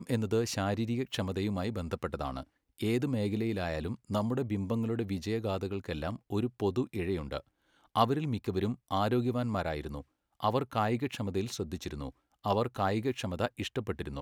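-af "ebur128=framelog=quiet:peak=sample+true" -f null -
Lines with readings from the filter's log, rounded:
Integrated loudness:
  I:         -33.2 LUFS
  Threshold: -43.4 LUFS
Loudness range:
  LRA:         1.9 LU
  Threshold: -53.4 LUFS
  LRA low:   -34.3 LUFS
  LRA high:  -32.4 LUFS
Sample peak:
  Peak:      -10.8 dBFS
True peak:
  Peak:      -10.8 dBFS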